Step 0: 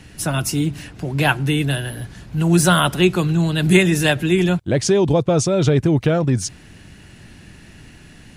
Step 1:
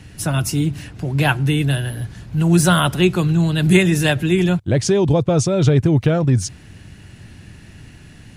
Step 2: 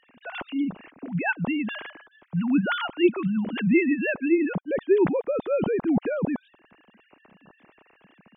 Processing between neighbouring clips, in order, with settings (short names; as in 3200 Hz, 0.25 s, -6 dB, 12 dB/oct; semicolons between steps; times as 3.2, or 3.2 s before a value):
bell 98 Hz +7 dB 1.2 oct; gain -1 dB
sine-wave speech; gain -8.5 dB